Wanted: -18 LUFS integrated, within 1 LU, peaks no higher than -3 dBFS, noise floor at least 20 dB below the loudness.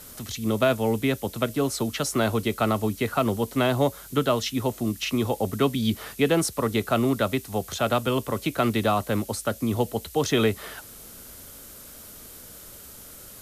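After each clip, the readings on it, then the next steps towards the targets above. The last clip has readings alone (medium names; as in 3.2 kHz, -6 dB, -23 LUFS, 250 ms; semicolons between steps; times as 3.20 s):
noise floor -45 dBFS; noise floor target -46 dBFS; loudness -25.5 LUFS; peak level -9.0 dBFS; loudness target -18.0 LUFS
-> noise reduction 6 dB, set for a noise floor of -45 dBFS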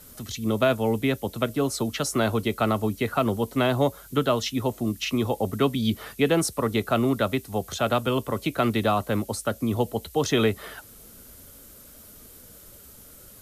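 noise floor -48 dBFS; loudness -25.5 LUFS; peak level -9.0 dBFS; loudness target -18.0 LUFS
-> trim +7.5 dB; peak limiter -3 dBFS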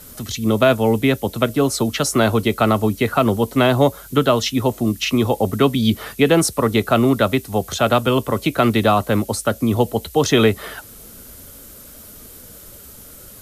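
loudness -18.0 LUFS; peak level -3.0 dBFS; noise floor -41 dBFS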